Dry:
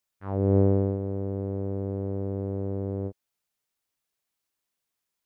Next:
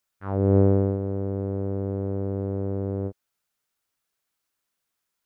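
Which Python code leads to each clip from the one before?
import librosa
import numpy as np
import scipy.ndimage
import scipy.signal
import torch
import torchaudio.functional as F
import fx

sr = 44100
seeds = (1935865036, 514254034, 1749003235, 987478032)

y = fx.peak_eq(x, sr, hz=1400.0, db=5.0, octaves=0.46)
y = y * librosa.db_to_amplitude(2.5)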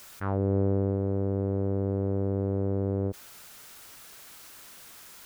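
y = fx.env_flatten(x, sr, amount_pct=70)
y = y * librosa.db_to_amplitude(-8.0)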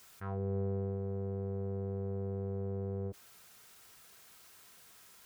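y = fx.notch_comb(x, sr, f0_hz=290.0)
y = y * librosa.db_to_amplitude(-8.5)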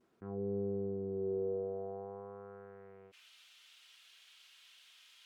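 y = fx.vibrato(x, sr, rate_hz=0.52, depth_cents=33.0)
y = fx.filter_sweep_bandpass(y, sr, from_hz=300.0, to_hz=3100.0, start_s=1.08, end_s=3.29, q=3.0)
y = y * librosa.db_to_amplitude(8.5)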